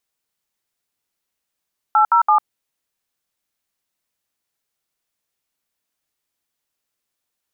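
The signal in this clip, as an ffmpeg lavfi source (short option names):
-f lavfi -i "aevalsrc='0.224*clip(min(mod(t,0.167),0.1-mod(t,0.167))/0.002,0,1)*(eq(floor(t/0.167),0)*(sin(2*PI*852*mod(t,0.167))+sin(2*PI*1336*mod(t,0.167)))+eq(floor(t/0.167),1)*(sin(2*PI*941*mod(t,0.167))+sin(2*PI*1336*mod(t,0.167)))+eq(floor(t/0.167),2)*(sin(2*PI*852*mod(t,0.167))+sin(2*PI*1209*mod(t,0.167))))':d=0.501:s=44100"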